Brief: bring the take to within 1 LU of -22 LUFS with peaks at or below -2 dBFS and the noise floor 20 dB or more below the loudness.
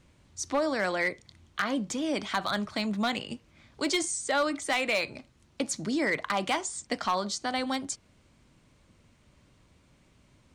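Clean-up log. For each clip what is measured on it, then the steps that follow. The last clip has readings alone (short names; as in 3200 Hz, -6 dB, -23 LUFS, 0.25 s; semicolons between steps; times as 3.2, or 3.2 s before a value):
clipped 0.4%; flat tops at -19.5 dBFS; loudness -30.0 LUFS; peak -19.5 dBFS; loudness target -22.0 LUFS
-> clip repair -19.5 dBFS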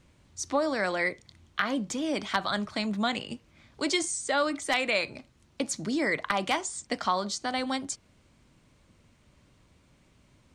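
clipped 0.0%; loudness -29.5 LUFS; peak -10.5 dBFS; loudness target -22.0 LUFS
-> gain +7.5 dB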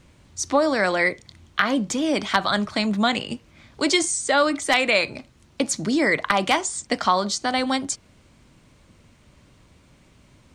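loudness -22.0 LUFS; peak -3.0 dBFS; noise floor -56 dBFS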